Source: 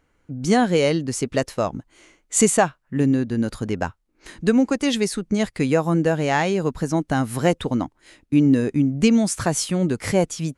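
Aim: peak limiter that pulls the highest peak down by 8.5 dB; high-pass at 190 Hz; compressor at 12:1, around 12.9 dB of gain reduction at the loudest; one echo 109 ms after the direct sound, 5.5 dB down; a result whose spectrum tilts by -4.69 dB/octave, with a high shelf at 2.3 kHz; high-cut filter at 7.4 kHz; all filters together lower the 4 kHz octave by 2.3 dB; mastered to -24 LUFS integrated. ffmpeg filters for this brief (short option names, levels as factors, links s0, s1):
-af "highpass=190,lowpass=7400,highshelf=f=2300:g=4,equalizer=f=4000:t=o:g=-7,acompressor=threshold=0.0501:ratio=12,alimiter=limit=0.075:level=0:latency=1,aecho=1:1:109:0.531,volume=2.51"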